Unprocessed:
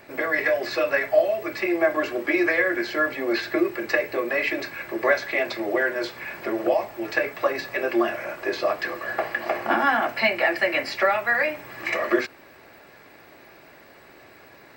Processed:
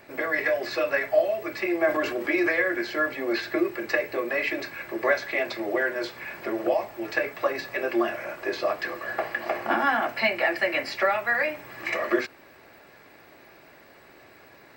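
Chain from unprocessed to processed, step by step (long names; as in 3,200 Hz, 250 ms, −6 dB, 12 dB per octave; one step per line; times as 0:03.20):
0:01.84–0:02.49: transient designer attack 0 dB, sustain +5 dB
level −2.5 dB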